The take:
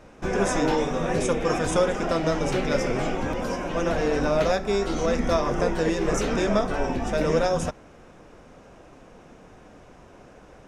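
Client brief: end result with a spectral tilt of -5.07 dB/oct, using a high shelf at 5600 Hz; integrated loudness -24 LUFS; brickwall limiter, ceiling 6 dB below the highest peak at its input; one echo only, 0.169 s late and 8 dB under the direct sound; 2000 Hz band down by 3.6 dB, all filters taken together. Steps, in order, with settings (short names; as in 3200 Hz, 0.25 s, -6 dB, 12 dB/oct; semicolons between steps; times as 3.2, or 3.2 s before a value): bell 2000 Hz -5.5 dB; high shelf 5600 Hz +4.5 dB; limiter -16 dBFS; echo 0.169 s -8 dB; gain +1.5 dB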